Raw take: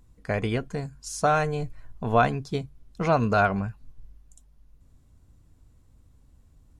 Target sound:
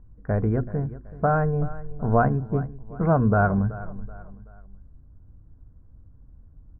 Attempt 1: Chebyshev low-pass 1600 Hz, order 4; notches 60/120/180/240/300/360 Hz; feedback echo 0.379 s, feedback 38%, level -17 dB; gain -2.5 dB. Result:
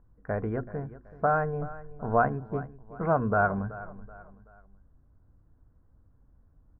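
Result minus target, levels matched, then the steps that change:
250 Hz band -3.5 dB
add after Chebyshev low-pass: low shelf 330 Hz +12 dB

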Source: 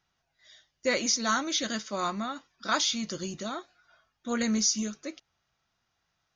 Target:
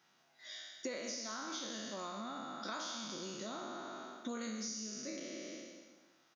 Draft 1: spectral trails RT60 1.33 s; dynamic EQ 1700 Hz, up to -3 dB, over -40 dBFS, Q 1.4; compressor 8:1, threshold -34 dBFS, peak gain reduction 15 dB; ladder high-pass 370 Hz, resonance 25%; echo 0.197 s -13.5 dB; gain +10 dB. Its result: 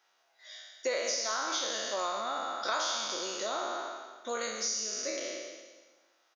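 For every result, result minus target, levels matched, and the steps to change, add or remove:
125 Hz band -19.0 dB; compressor: peak gain reduction -10.5 dB
change: ladder high-pass 170 Hz, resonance 25%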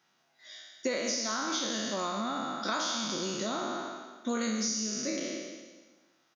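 compressor: peak gain reduction -10.5 dB
change: compressor 8:1, threshold -46 dBFS, peak gain reduction 25.5 dB

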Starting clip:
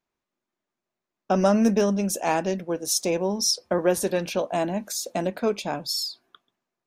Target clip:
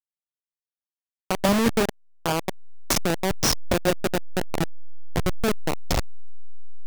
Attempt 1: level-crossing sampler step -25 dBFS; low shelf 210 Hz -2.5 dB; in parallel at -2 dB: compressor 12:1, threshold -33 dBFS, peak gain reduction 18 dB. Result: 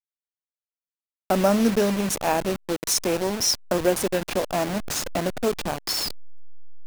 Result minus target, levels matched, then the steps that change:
level-crossing sampler: distortion -16 dB
change: level-crossing sampler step -14.5 dBFS

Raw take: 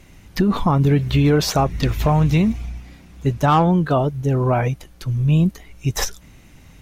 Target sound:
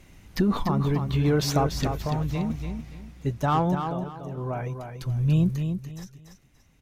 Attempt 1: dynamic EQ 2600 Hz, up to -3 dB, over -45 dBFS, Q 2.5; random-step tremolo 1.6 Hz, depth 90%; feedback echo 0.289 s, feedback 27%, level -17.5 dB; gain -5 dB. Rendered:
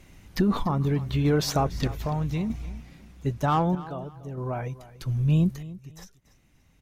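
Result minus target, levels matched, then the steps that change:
echo-to-direct -10.5 dB
change: feedback echo 0.289 s, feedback 27%, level -7 dB

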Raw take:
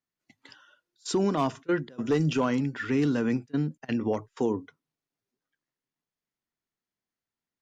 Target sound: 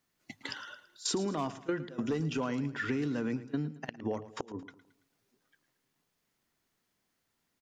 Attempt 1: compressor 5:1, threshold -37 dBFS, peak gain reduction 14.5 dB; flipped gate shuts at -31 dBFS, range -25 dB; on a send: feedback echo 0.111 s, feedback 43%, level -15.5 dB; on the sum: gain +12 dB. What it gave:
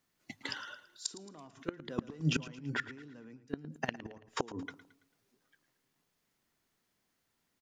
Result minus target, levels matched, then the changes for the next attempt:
compressor: peak gain reduction -6.5 dB
change: compressor 5:1, threshold -45 dBFS, peak gain reduction 21 dB

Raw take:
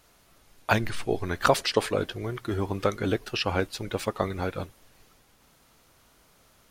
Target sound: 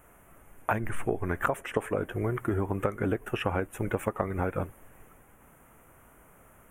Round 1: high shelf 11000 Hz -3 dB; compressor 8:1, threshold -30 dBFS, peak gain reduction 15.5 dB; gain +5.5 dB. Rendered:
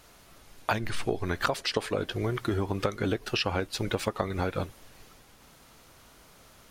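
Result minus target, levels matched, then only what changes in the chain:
4000 Hz band +12.0 dB
add first: Butterworth band-stop 4500 Hz, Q 0.66

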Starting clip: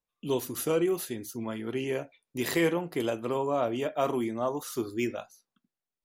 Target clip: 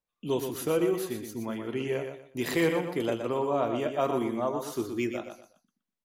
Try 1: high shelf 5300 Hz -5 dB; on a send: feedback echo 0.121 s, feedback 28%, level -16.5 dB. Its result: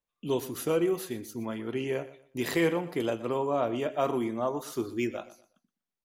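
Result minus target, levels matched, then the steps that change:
echo-to-direct -9.5 dB
change: feedback echo 0.121 s, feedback 28%, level -7 dB

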